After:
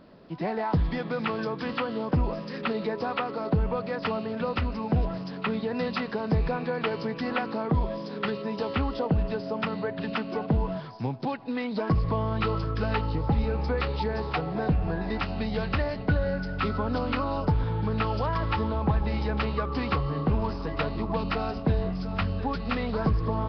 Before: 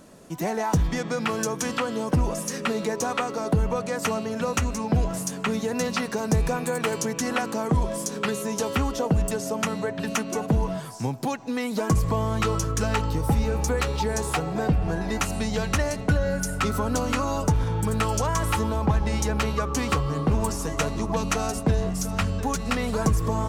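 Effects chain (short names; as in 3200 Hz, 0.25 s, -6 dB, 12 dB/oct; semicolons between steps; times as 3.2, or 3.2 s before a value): gain -2.5 dB; Nellymoser 22 kbps 11025 Hz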